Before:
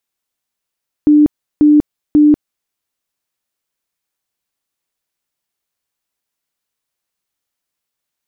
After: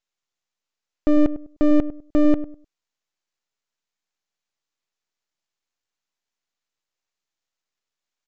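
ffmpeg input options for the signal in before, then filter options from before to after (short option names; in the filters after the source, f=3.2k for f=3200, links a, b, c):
-f lavfi -i "aevalsrc='0.596*sin(2*PI*298*mod(t,0.54))*lt(mod(t,0.54),57/298)':d=1.62:s=44100"
-filter_complex "[0:a]lowshelf=f=330:g=-6.5,aresample=16000,aeval=exprs='max(val(0),0)':c=same,aresample=44100,asplit=2[a][b];[b]adelay=101,lowpass=f=830:p=1,volume=-12.5dB,asplit=2[c][d];[d]adelay=101,lowpass=f=830:p=1,volume=0.27,asplit=2[e][f];[f]adelay=101,lowpass=f=830:p=1,volume=0.27[g];[a][c][e][g]amix=inputs=4:normalize=0"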